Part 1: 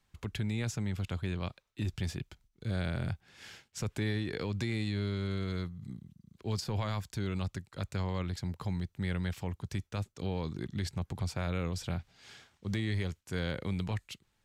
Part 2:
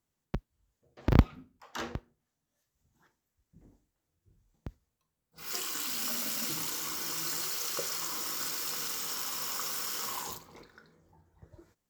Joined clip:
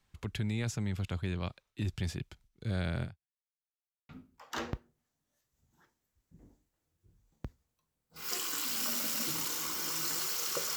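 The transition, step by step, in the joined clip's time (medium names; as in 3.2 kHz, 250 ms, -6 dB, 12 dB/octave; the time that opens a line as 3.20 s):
part 1
3.03–3.54 s: fade out exponential
3.54–4.09 s: mute
4.09 s: go over to part 2 from 1.31 s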